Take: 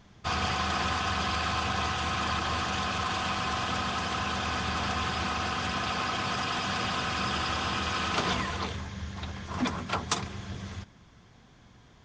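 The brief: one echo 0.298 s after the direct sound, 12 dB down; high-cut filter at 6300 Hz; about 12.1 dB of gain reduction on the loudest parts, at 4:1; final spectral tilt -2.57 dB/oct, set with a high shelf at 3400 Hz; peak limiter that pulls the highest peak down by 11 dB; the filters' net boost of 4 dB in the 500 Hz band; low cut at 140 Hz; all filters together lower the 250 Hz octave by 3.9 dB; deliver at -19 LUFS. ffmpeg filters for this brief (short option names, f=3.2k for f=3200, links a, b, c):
-af "highpass=140,lowpass=6.3k,equalizer=f=250:t=o:g=-6,equalizer=f=500:t=o:g=6.5,highshelf=f=3.4k:g=7.5,acompressor=threshold=-36dB:ratio=4,alimiter=level_in=6dB:limit=-24dB:level=0:latency=1,volume=-6dB,aecho=1:1:298:0.251,volume=20dB"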